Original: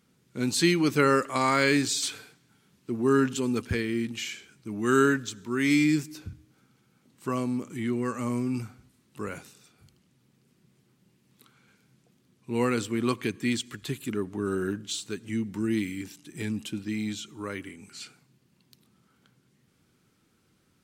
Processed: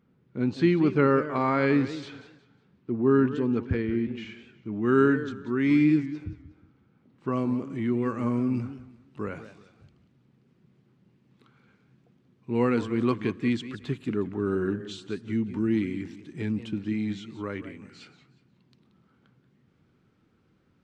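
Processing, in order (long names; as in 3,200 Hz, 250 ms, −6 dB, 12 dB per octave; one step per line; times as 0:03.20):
head-to-tape spacing loss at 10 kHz 44 dB, from 0:04.97 at 10 kHz 38 dB, from 0:07.32 at 10 kHz 27 dB
feedback echo with a swinging delay time 181 ms, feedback 30%, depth 182 cents, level −13.5 dB
level +3 dB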